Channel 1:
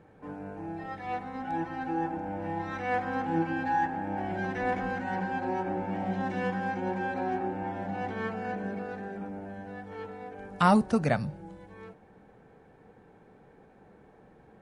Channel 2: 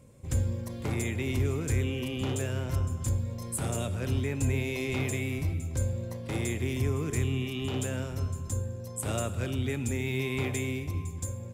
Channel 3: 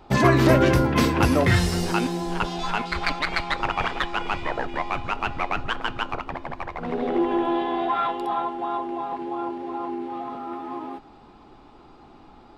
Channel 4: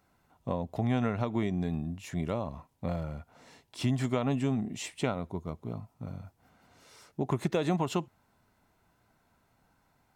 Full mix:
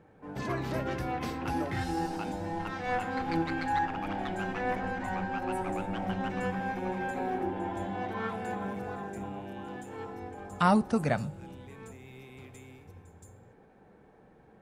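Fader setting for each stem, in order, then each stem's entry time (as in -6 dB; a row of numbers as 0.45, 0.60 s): -2.0 dB, -19.0 dB, -16.5 dB, off; 0.00 s, 2.00 s, 0.25 s, off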